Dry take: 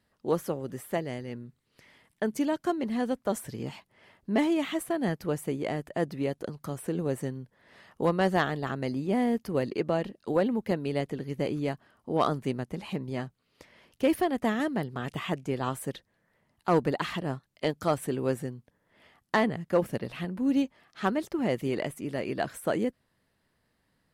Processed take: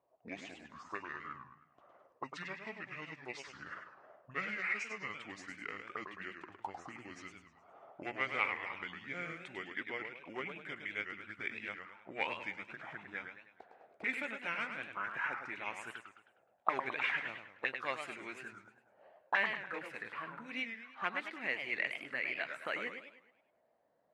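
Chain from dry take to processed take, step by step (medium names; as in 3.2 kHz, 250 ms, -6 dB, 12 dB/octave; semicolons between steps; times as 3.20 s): pitch bend over the whole clip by -9.5 st ending unshifted; auto-wah 620–2200 Hz, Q 4.9, up, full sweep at -29 dBFS; modulated delay 104 ms, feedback 44%, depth 207 cents, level -7 dB; trim +10 dB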